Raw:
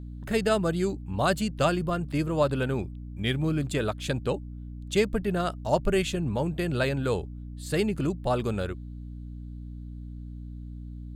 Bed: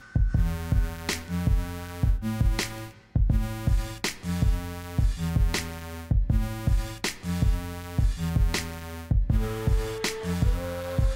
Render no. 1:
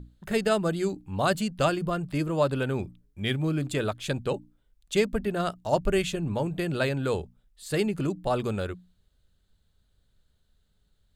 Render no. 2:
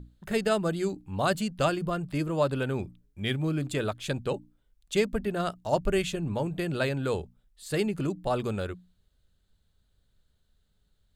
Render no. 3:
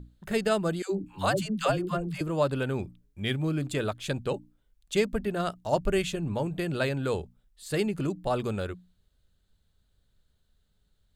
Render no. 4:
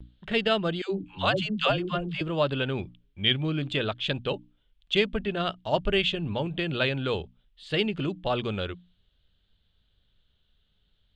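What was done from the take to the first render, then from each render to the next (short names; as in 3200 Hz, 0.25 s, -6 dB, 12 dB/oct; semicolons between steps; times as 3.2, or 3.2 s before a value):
notches 60/120/180/240/300 Hz
gain -1.5 dB
0.82–2.21 dispersion lows, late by 0.106 s, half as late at 490 Hz
vibrato 0.55 Hz 29 cents; synth low-pass 3200 Hz, resonance Q 4.3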